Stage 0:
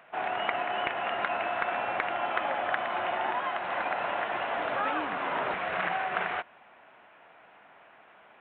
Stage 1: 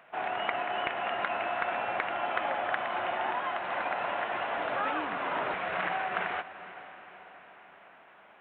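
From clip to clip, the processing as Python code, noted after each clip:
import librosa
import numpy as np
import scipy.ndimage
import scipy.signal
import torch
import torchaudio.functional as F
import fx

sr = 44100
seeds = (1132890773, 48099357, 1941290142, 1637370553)

y = fx.echo_diffused(x, sr, ms=473, feedback_pct=55, wet_db=-14.5)
y = y * librosa.db_to_amplitude(-1.5)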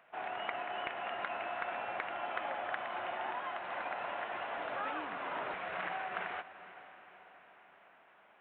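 y = fx.peak_eq(x, sr, hz=140.0, db=-2.0, octaves=2.3)
y = y * librosa.db_to_amplitude(-7.0)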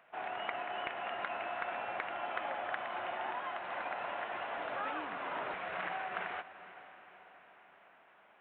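y = x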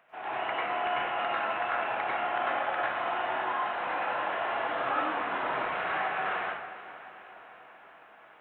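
y = fx.rev_plate(x, sr, seeds[0], rt60_s=0.8, hf_ratio=0.7, predelay_ms=85, drr_db=-7.5)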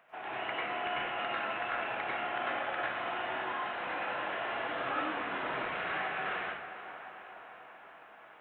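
y = fx.dynamic_eq(x, sr, hz=890.0, q=0.89, threshold_db=-43.0, ratio=4.0, max_db=-7)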